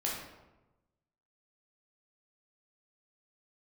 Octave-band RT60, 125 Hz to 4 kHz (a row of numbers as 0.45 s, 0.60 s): 1.4 s, 1.2 s, 1.1 s, 1.0 s, 0.80 s, 0.60 s